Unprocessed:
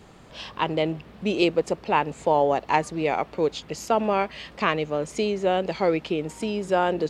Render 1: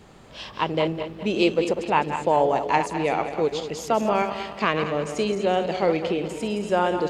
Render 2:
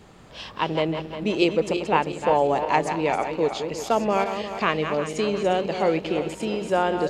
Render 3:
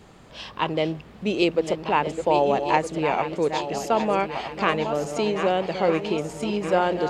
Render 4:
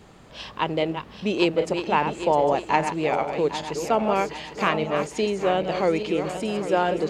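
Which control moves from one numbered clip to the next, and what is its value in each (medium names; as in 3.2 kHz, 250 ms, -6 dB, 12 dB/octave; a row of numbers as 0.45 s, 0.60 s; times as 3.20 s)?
backward echo that repeats, time: 103 ms, 177 ms, 631 ms, 402 ms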